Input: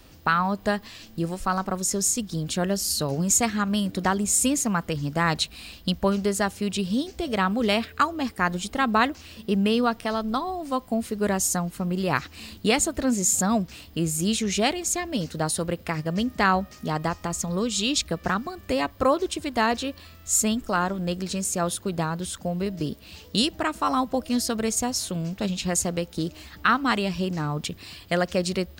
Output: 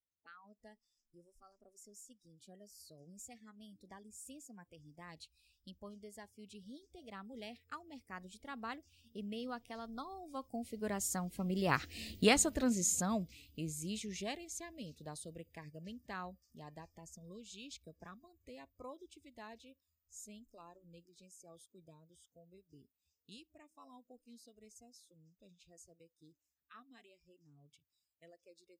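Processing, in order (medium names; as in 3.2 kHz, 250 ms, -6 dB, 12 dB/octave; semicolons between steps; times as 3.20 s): Doppler pass-by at 12.11 s, 12 m/s, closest 5.7 m; spectral noise reduction 21 dB; trim -5.5 dB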